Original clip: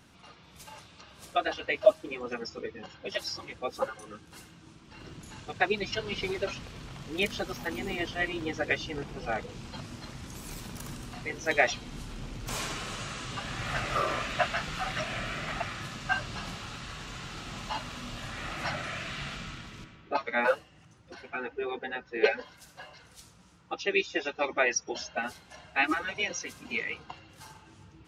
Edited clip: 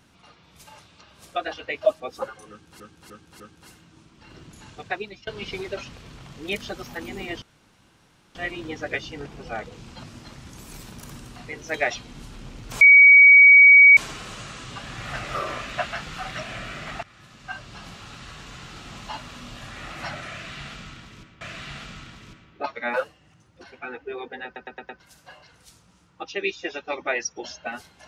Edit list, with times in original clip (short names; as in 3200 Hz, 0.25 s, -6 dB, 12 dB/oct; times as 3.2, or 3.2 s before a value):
2–3.6 cut
4.1–4.4 loop, 4 plays
5.49–5.97 fade out, to -21 dB
8.12 insert room tone 0.93 s
12.58 add tone 2260 Hz -7 dBFS 1.16 s
15.64–16.84 fade in, from -17 dB
18.92–20.02 loop, 2 plays
21.96 stutter in place 0.11 s, 5 plays